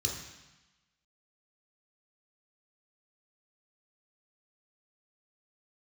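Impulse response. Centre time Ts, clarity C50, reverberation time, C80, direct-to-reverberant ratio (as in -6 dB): 46 ms, 4.0 dB, 1.0 s, 7.0 dB, -1.5 dB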